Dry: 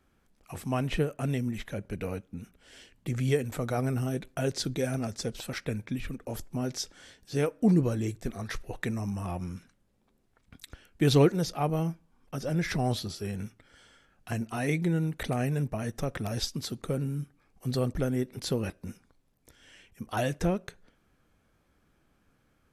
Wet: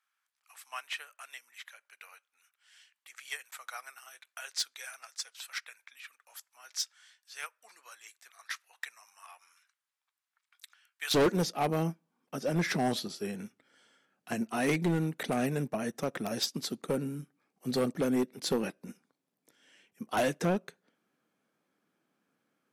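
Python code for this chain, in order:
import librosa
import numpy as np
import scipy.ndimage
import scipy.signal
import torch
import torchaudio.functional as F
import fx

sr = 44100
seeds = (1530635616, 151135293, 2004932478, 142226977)

y = fx.highpass(x, sr, hz=fx.steps((0.0, 1100.0), (11.14, 180.0)), slope=24)
y = np.clip(y, -10.0 ** (-26.5 / 20.0), 10.0 ** (-26.5 / 20.0))
y = fx.upward_expand(y, sr, threshold_db=-51.0, expansion=1.5)
y = F.gain(torch.from_numpy(y), 5.0).numpy()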